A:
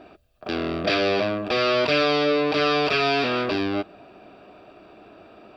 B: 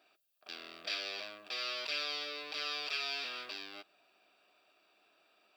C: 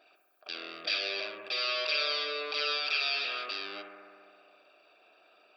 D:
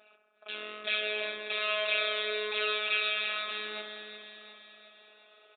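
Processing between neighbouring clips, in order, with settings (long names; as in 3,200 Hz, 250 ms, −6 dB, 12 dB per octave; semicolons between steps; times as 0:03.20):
first difference; level −4.5 dB
spectral envelope exaggerated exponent 1.5; on a send: bucket-brigade delay 66 ms, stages 1,024, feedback 81%, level −7.5 dB; on the sum: level +6.5 dB
phases set to zero 212 Hz; repeating echo 359 ms, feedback 57%, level −9.5 dB; downsampling to 8,000 Hz; level +4.5 dB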